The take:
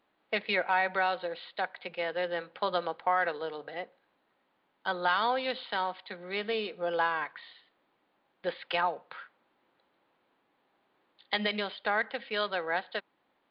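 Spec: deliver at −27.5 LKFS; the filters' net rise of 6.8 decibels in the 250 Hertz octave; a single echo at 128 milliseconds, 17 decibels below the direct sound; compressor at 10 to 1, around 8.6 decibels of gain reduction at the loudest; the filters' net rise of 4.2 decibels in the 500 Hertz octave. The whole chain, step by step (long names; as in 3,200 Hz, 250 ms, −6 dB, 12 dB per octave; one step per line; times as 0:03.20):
parametric band 250 Hz +8.5 dB
parametric band 500 Hz +3 dB
downward compressor 10 to 1, threshold −30 dBFS
single-tap delay 128 ms −17 dB
level +9 dB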